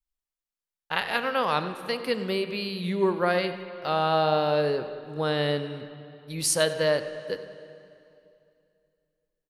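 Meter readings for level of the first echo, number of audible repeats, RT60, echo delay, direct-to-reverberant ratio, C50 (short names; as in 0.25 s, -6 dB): -17.5 dB, 1, 2.6 s, 96 ms, 9.5 dB, 10.0 dB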